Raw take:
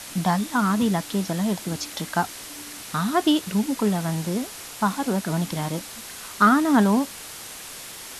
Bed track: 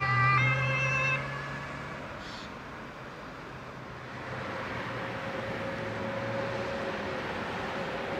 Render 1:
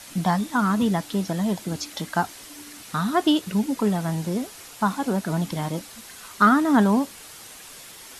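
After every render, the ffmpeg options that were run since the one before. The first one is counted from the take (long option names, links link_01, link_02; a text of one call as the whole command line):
ffmpeg -i in.wav -af "afftdn=noise_reduction=6:noise_floor=-39" out.wav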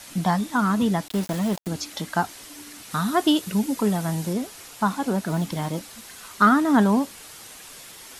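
ffmpeg -i in.wav -filter_complex "[0:a]asettb=1/sr,asplit=3[link_01][link_02][link_03];[link_01]atrim=end=1.084[link_04];[link_02]atrim=start=1.08:end=1.68,asetpts=PTS-STARTPTS,afade=type=in:duration=0.004:curve=qsin,afade=type=out:start_time=0.596:duration=0.004:curve=qsin,aeval=exprs='val(0)*gte(abs(val(0)),0.0282)':channel_layout=same[link_05];[link_03]atrim=start=1.676[link_06];[link_04][link_05]acrossfade=duration=0.004:curve1=hsin:curve2=qsin[link_07];[link_07][link_06]acrossfade=duration=0.004:curve1=qsin:curve2=hsin,asettb=1/sr,asplit=3[link_08][link_09][link_10];[link_08]atrim=end=2.914[link_11];[link_09]atrim=start=2.91:end=4.33,asetpts=PTS-STARTPTS,afade=type=in:duration=0.004:curve=qsin,afade=type=out:start_time=1.416:duration=0.004:curve=qsin,highshelf=frequency=6900:gain=6.5[link_12];[link_10]atrim=start=4.326[link_13];[link_11][link_12]acrossfade=duration=0.004:curve1=hsin:curve2=qsin[link_14];[link_14][link_13]acrossfade=duration=0.004:curve1=qsin:curve2=hsin,asettb=1/sr,asplit=3[link_15][link_16][link_17];[link_15]atrim=end=5.274[link_18];[link_16]atrim=start=5.27:end=6.36,asetpts=PTS-STARTPTS,afade=type=in:duration=0.004:curve=qsin,afade=type=out:start_time=1.086:duration=0.004:curve=qsin,acrusher=bits=8:mode=log:mix=0:aa=0.000001[link_19];[link_17]atrim=start=6.356[link_20];[link_18][link_19]acrossfade=duration=0.004:curve1=hsin:curve2=qsin[link_21];[link_21][link_20]acrossfade=duration=0.004:curve1=qsin:curve2=hsin" out.wav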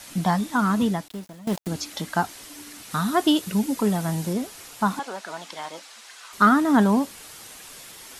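ffmpeg -i in.wav -filter_complex "[0:a]asettb=1/sr,asplit=3[link_01][link_02][link_03];[link_01]atrim=end=4.994[link_04];[link_02]atrim=start=4.99:end=6.33,asetpts=PTS-STARTPTS,afade=type=in:duration=0.004:curve=qsin,afade=type=out:start_time=1.336:duration=0.004:curve=qsin,highpass=710,lowpass=7100[link_05];[link_03]atrim=start=6.326[link_06];[link_04][link_05]acrossfade=duration=0.004:curve1=hsin:curve2=qsin[link_07];[link_07][link_06]acrossfade=duration=0.004:curve1=qsin:curve2=hsin,asplit=2[link_08][link_09];[link_08]atrim=end=1.47,asetpts=PTS-STARTPTS,afade=type=out:start_time=0.84:duration=0.63:curve=qua:silence=0.112202[link_10];[link_09]atrim=start=1.47,asetpts=PTS-STARTPTS,afade=type=in:duration=0.004:curve=hsin:silence=0.112202[link_11];[link_10][link_11]concat=n=2:v=0:a=1" out.wav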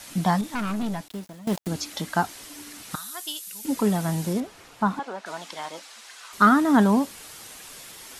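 ffmpeg -i in.wav -filter_complex "[0:a]asettb=1/sr,asplit=3[link_01][link_02][link_03];[link_01]atrim=end=0.414[link_04];[link_02]atrim=start=0.41:end=1.08,asetpts=PTS-STARTPTS,afade=type=in:duration=0.004:curve=qsin,afade=type=out:start_time=0.666:duration=0.004:curve=qsin,aeval=exprs='(tanh(17.8*val(0)+0.4)-tanh(0.4))/17.8':channel_layout=same[link_05];[link_03]atrim=start=1.076[link_06];[link_04][link_05]acrossfade=duration=0.004:curve1=hsin:curve2=qsin[link_07];[link_07][link_06]acrossfade=duration=0.004:curve1=qsin:curve2=hsin,asettb=1/sr,asplit=3[link_08][link_09][link_10];[link_08]atrim=end=2.954[link_11];[link_09]atrim=start=2.95:end=3.65,asetpts=PTS-STARTPTS,afade=type=in:duration=0.004:curve=qsin,afade=type=out:start_time=0.696:duration=0.004:curve=qsin,aderivative[link_12];[link_10]atrim=start=3.646[link_13];[link_11][link_12]acrossfade=duration=0.004:curve1=hsin:curve2=qsin[link_14];[link_14][link_13]acrossfade=duration=0.004:curve1=qsin:curve2=hsin,asettb=1/sr,asplit=3[link_15][link_16][link_17];[link_15]atrim=end=4.404[link_18];[link_16]atrim=start=4.4:end=5.26,asetpts=PTS-STARTPTS,afade=type=in:duration=0.004:curve=qsin,afade=type=out:start_time=0.856:duration=0.004:curve=qsin,lowpass=frequency=2000:poles=1[link_19];[link_17]atrim=start=5.256[link_20];[link_18][link_19]acrossfade=duration=0.004:curve1=hsin:curve2=qsin[link_21];[link_21][link_20]acrossfade=duration=0.004:curve1=qsin:curve2=hsin" out.wav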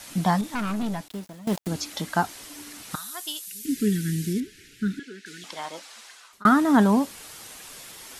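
ffmpeg -i in.wav -filter_complex "[0:a]asettb=1/sr,asplit=3[link_01][link_02][link_03];[link_01]atrim=end=3.464[link_04];[link_02]atrim=start=3.46:end=5.44,asetpts=PTS-STARTPTS,afade=type=in:duration=0.004:curve=qsin,afade=type=out:start_time=1.976:duration=0.004:curve=qsin,asuperstop=centerf=810:order=12:qfactor=0.71[link_05];[link_03]atrim=start=5.436[link_06];[link_04][link_05]acrossfade=duration=0.004:curve1=hsin:curve2=qsin[link_07];[link_07][link_06]acrossfade=duration=0.004:curve1=qsin:curve2=hsin,asplit=2[link_08][link_09];[link_08]atrim=end=6.45,asetpts=PTS-STARTPTS,afade=type=out:start_time=6.01:duration=0.44[link_10];[link_09]atrim=start=6.45,asetpts=PTS-STARTPTS,afade=type=in:duration=0.004:curve=hsin[link_11];[link_10][link_11]concat=n=2:v=0:a=1" out.wav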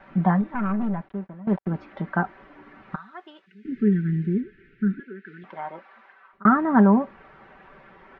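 ffmpeg -i in.wav -af "lowpass=frequency=1800:width=0.5412,lowpass=frequency=1800:width=1.3066,aecho=1:1:5.2:0.56" out.wav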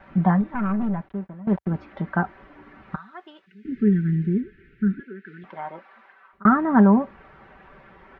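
ffmpeg -i in.wav -af "equalizer=frequency=61:width=0.79:gain=8.5" out.wav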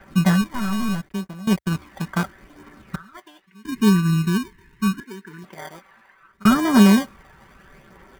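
ffmpeg -i in.wav -filter_complex "[0:a]acrossover=split=800[link_01][link_02];[link_01]acrusher=samples=33:mix=1:aa=0.000001[link_03];[link_03][link_02]amix=inputs=2:normalize=0,aphaser=in_gain=1:out_gain=1:delay=1.2:decay=0.34:speed=0.75:type=triangular" out.wav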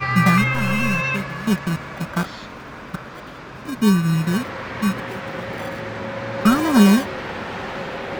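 ffmpeg -i in.wav -i bed.wav -filter_complex "[1:a]volume=5.5dB[link_01];[0:a][link_01]amix=inputs=2:normalize=0" out.wav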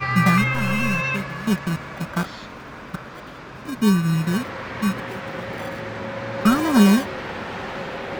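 ffmpeg -i in.wav -af "volume=-1.5dB" out.wav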